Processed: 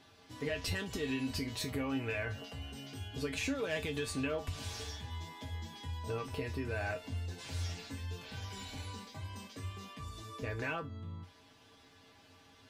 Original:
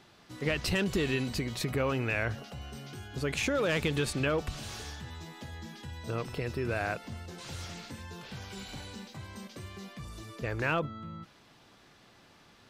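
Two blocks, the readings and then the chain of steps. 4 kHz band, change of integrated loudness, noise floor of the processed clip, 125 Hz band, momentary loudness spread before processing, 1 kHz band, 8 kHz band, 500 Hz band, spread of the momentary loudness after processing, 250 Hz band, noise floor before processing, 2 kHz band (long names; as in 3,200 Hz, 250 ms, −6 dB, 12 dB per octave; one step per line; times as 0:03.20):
−4.0 dB, −5.5 dB, −62 dBFS, −4.5 dB, 15 LU, −6.5 dB, −4.0 dB, −6.5 dB, 10 LU, −4.5 dB, −60 dBFS, −6.0 dB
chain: notch filter 1,300 Hz, Q 10
downward compressor, threshold −31 dBFS, peak gain reduction 6.5 dB
tuned comb filter 90 Hz, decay 0.2 s, harmonics odd, mix 90%
level +7.5 dB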